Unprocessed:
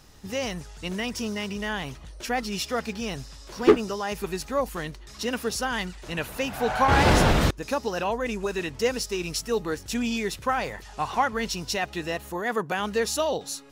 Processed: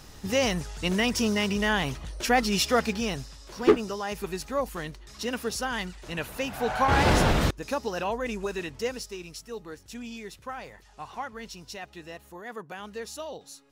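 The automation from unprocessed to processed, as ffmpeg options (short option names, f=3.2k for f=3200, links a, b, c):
-af "volume=5dB,afade=t=out:st=2.76:d=0.6:silence=0.421697,afade=t=out:st=8.42:d=0.9:silence=0.334965"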